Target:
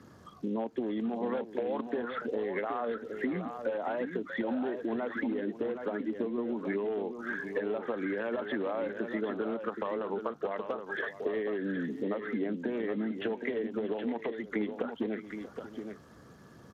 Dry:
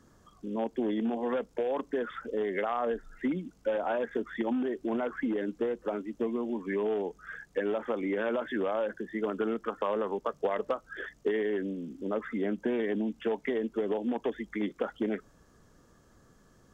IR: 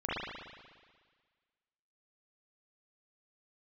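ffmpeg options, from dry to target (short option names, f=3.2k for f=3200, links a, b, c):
-filter_complex "[0:a]asplit=3[a][b][c];[a]afade=t=out:st=5.91:d=0.02[d];[b]highshelf=f=2.4k:g=-3.5,afade=t=in:st=5.91:d=0.02,afade=t=out:st=6.52:d=0.02[e];[c]afade=t=in:st=6.52:d=0.02[f];[d][e][f]amix=inputs=3:normalize=0,asettb=1/sr,asplit=3[g][h][i];[g]atrim=end=11.004[j];[h]atrim=start=11:end=12.23,asetpts=PTS-STARTPTS,afade=t=in:d=0.004:c=qsin,afade=t=out:st=1.226:d=0.004:c=qsin,highpass=110[k];[i]atrim=start=12.226[l];[j][k]acrossfade=d=0.004:c1=hsin:c2=qsin[m];[m][l]acrossfade=d=0.004:c1=qsin:c2=hsin,acompressor=threshold=-38dB:ratio=8,aecho=1:1:634|771:0.178|0.422,volume=7dB" -ar 32000 -c:a libspeex -b:a 28k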